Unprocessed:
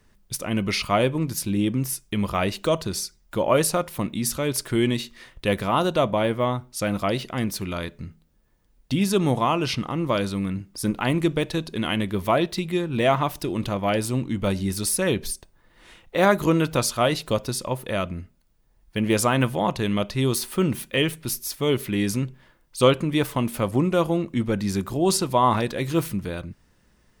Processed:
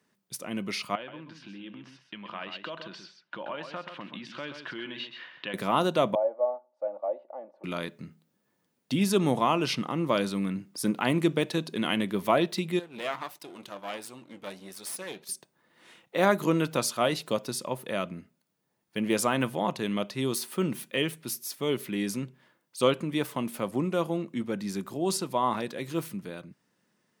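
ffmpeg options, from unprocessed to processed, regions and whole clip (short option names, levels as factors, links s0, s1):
-filter_complex "[0:a]asettb=1/sr,asplit=3[s0][s1][s2];[s0]atrim=end=0.954[s3];[s1]atrim=start=0.95:end=5.54,asetpts=PTS-STARTPTS,afade=t=in:d=0.004:c=qsin,afade=t=out:st=4.586:d=0.004:c=qsin,acompressor=threshold=0.0398:ratio=6:attack=3.2:release=140:knee=1:detection=peak,highpass=190,equalizer=f=230:t=q:w=4:g=-5,equalizer=f=420:t=q:w=4:g=-8,equalizer=f=1000:t=q:w=4:g=4,equalizer=f=1600:t=q:w=4:g=9,equalizer=f=2900:t=q:w=4:g=8,lowpass=f=4000:w=0.5412,lowpass=f=4000:w=1.3066,aecho=1:1:130:0.376,atrim=end_sample=202419[s4];[s2]atrim=start=5.536[s5];[s3][s4]acrossfade=d=0.004:c1=hsin:c2=qsin[s6];[s6][s5]acrossfade=d=0.004:c1=qsin:c2=hsin,asettb=1/sr,asplit=3[s7][s8][s9];[s7]atrim=end=6.154[s10];[s8]atrim=start=6.15:end=7.64,asetpts=PTS-STARTPTS,afade=t=in:d=0.004:c=qsin,afade=t=out:st=1.486:d=0.004:c=qsin,asuperpass=centerf=660:order=4:qfactor=2.5,aecho=1:1:3.5:0.69,atrim=end_sample=65709[s11];[s9]atrim=start=7.636[s12];[s10][s11]acrossfade=d=0.004:c1=hsin:c2=qsin[s13];[s13][s12]acrossfade=d=0.004:c1=qsin:c2=hsin,asettb=1/sr,asplit=3[s14][s15][s16];[s14]atrim=end=12.794[s17];[s15]atrim=start=12.79:end=15.29,asetpts=PTS-STARTPTS,afade=t=in:d=0.004:c=qsin,afade=t=out:st=2.496:d=0.004:c=qsin,aeval=exprs='if(lt(val(0),0),0.251*val(0),val(0))':c=same,equalizer=f=160:w=0.44:g=-8.5,flanger=delay=1.8:depth=5:regen=79:speed=1.5:shape=sinusoidal[s18];[s16]atrim=start=15.286[s19];[s17][s18]acrossfade=d=0.004:c1=hsin:c2=qsin[s20];[s20][s19]acrossfade=d=0.004:c1=qsin:c2=hsin,highpass=f=150:w=0.5412,highpass=f=150:w=1.3066,dynaudnorm=f=580:g=11:m=3.76,volume=0.398"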